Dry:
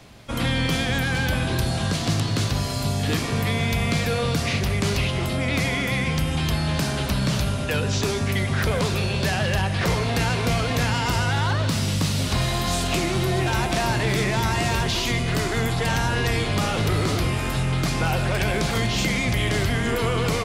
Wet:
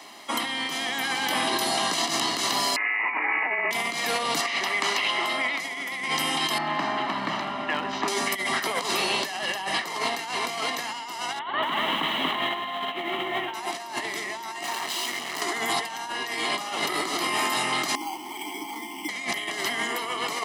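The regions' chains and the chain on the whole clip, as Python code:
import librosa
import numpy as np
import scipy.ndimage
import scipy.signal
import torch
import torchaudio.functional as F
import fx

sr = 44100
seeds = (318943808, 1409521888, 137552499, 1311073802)

y = fx.chain(x, sr, fx.highpass(hz=340.0, slope=12),
    fx.freq_invert(carrier_hz=2700), at=(2.76, 3.71))
y = fx.chain(y, sr, fx.lowpass(hz=1000.0, slope=6),
    fx.tilt_shelf(db=-9.0, hz=780.0), at=(4.41, 5.6))
y = fx.chain(y, sr, fx.lowpass(hz=1900.0, slope=12),
    fx.peak_eq(hz=460.0, db=-13.0, octaves=0.35),
    fx.clip_hard(threshold_db=-18.5), at=(6.58, 8.08))
y = fx.chain(y, sr, fx.ellip_lowpass(hz=3400.0, order=4, stop_db=40),
    fx.hum_notches(base_hz=50, count=4),
    fx.echo_crushed(ms=236, feedback_pct=35, bits=8, wet_db=-4.5), at=(11.39, 13.54))
y = fx.chain(y, sr, fx.high_shelf(hz=8000.0, db=-6.0),
    fx.overload_stage(gain_db=33.5), at=(14.63, 15.42))
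y = fx.chain(y, sr, fx.vowel_filter(vowel='u'),
    fx.resample_bad(factor=8, down='filtered', up='hold'), at=(17.95, 19.09))
y = scipy.signal.sosfilt(scipy.signal.butter(4, 330.0, 'highpass', fs=sr, output='sos'), y)
y = y + 0.69 * np.pad(y, (int(1.0 * sr / 1000.0), 0))[:len(y)]
y = fx.over_compress(y, sr, threshold_db=-29.0, ratio=-0.5)
y = y * librosa.db_to_amplitude(2.0)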